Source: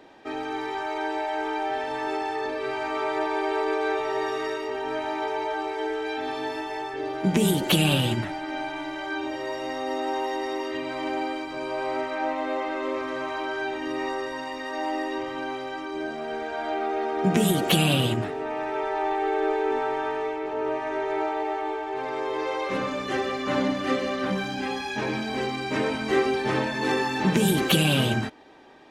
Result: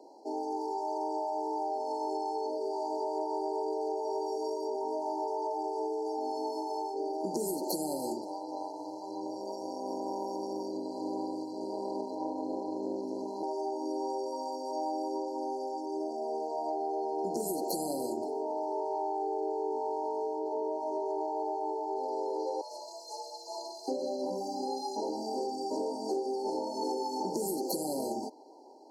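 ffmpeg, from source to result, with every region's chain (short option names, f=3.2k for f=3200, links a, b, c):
-filter_complex "[0:a]asettb=1/sr,asplit=3[a][b][c];[a]atrim=end=8.174[d];[b]atrim=start=8.17:end=13.43,asetpts=PTS-STARTPTS,afade=t=in:d=0.004:c=qsin,afade=t=out:st=5.256:d=0.004:c=qsin,tremolo=f=190:d=0.857,asubboost=boost=9:cutoff=210[e];[c]atrim=start=13.426[f];[d][e]acrossfade=d=0.004:c1=hsin:c2=qsin[g];[g][f]acrossfade=d=0.004:c1=qsin:c2=hsin,asettb=1/sr,asplit=3[h][i][j];[h]atrim=end=22.614[k];[i]atrim=start=22.61:end=23.88,asetpts=PTS-STARTPTS,afade=t=in:d=0.004:c=qsin,afade=t=out:st=1.266:d=0.004:c=qsin,highpass=1.2k,afreqshift=79[l];[j]atrim=start=23.876[m];[k][l]acrossfade=d=0.004:c1=hsin:c2=qsin[n];[n][m]acrossfade=d=0.004:c1=qsin:c2=hsin,highpass=f=290:w=0.5412,highpass=f=290:w=1.3066,afftfilt=real='re*(1-between(b*sr/4096,1000,4100))':imag='im*(1-between(b*sr/4096,1000,4100))':win_size=4096:overlap=0.75,acompressor=threshold=-29dB:ratio=6,volume=-1dB"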